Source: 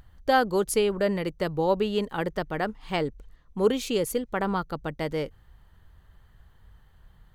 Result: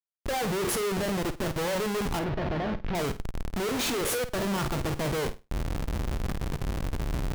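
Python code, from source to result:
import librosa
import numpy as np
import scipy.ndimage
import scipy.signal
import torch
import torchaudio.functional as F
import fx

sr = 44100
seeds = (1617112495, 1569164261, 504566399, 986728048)

y = fx.spec_trails(x, sr, decay_s=0.31)
y = fx.recorder_agc(y, sr, target_db=-18.0, rise_db_per_s=68.0, max_gain_db=30)
y = fx.highpass(y, sr, hz=fx.line((3.96, 440.0), (4.51, 110.0)), slope=12, at=(3.96, 4.51), fade=0.02)
y = fx.noise_reduce_blind(y, sr, reduce_db=11)
y = fx.dynamic_eq(y, sr, hz=580.0, q=1.7, threshold_db=-36.0, ratio=4.0, max_db=6)
y = fx.level_steps(y, sr, step_db=15, at=(0.71, 1.58))
y = fx.schmitt(y, sr, flips_db=-33.5)
y = fx.air_absorb(y, sr, metres=280.0, at=(2.19, 2.95))
y = fx.room_flutter(y, sr, wall_m=8.7, rt60_s=0.25)
y = y * librosa.db_to_amplitude(-3.5)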